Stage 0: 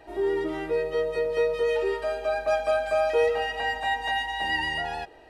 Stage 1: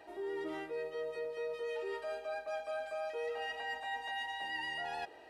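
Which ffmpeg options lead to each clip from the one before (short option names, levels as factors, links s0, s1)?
-af "highpass=f=330:p=1,areverse,acompressor=threshold=0.0178:ratio=6,areverse,volume=0.75"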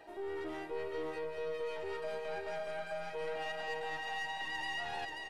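-af "aeval=exprs='(tanh(63.1*val(0)+0.5)-tanh(0.5))/63.1':c=same,aecho=1:1:535:0.631,volume=1.26"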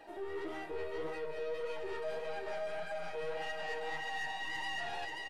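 -filter_complex "[0:a]flanger=delay=3.5:depth=7.6:regen=40:speed=1.7:shape=sinusoidal,asoftclip=type=tanh:threshold=0.015,asplit=2[s0][s1];[s1]adelay=27,volume=0.2[s2];[s0][s2]amix=inputs=2:normalize=0,volume=1.78"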